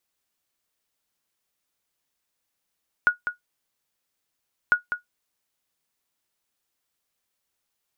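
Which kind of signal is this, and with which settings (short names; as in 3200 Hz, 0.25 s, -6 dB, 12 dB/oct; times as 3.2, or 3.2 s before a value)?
sonar ping 1450 Hz, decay 0.13 s, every 1.65 s, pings 2, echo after 0.20 s, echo -9 dB -9 dBFS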